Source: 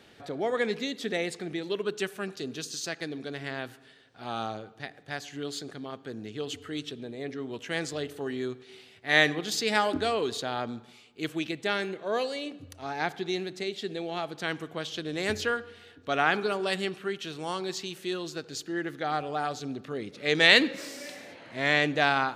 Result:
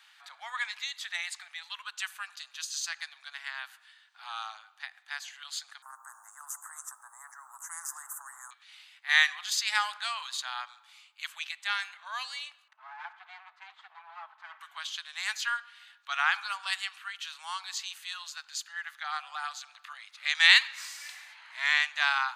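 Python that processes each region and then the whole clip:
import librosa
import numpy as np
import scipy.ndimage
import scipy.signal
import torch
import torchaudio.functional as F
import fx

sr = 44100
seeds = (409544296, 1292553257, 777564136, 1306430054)

y = fx.chain(x, sr, fx.ellip_bandstop(low_hz=1200.0, high_hz=7800.0, order=3, stop_db=50),
    fx.spectral_comp(ratio=4.0), at=(5.82, 8.51))
y = fx.chain(y, sr, fx.lower_of_two(delay_ms=4.6),
    fx.lowpass(hz=1400.0, slope=12), at=(12.68, 14.61))
y = fx.chain(y, sr, fx.low_shelf(hz=250.0, db=-9.0),
    fx.band_squash(depth_pct=40), at=(19.16, 19.93))
y = scipy.signal.sosfilt(scipy.signal.butter(8, 920.0, 'highpass', fs=sr, output='sos'), y)
y = fx.notch(y, sr, hz=5500.0, q=15.0)
y = fx.dynamic_eq(y, sr, hz=6400.0, q=1.5, threshold_db=-46.0, ratio=4.0, max_db=3)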